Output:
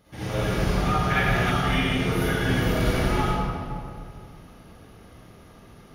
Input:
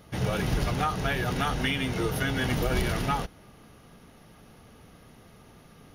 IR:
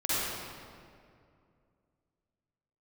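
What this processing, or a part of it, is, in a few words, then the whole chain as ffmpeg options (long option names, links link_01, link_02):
stairwell: -filter_complex "[1:a]atrim=start_sample=2205[link_01];[0:a][link_01]afir=irnorm=-1:irlink=0,asettb=1/sr,asplit=3[link_02][link_03][link_04];[link_02]atrim=end=1.104[link_05];[link_03]atrim=start=1.1:end=1.51,asetpts=PTS-STARTPTS,afade=type=in:duration=0.004:curve=qsin,afade=type=out:start_time=0.406:duration=0.004:curve=qsin,equalizer=frequency=2100:width_type=o:width=0.79:gain=7[link_06];[link_04]atrim=start=1.506[link_07];[link_05][link_06]acrossfade=duration=0.004:curve1=hsin:curve2=qsin[link_08];[link_08][link_07]acrossfade=duration=0.004:curve1=qsin:curve2=hsin,volume=-7dB"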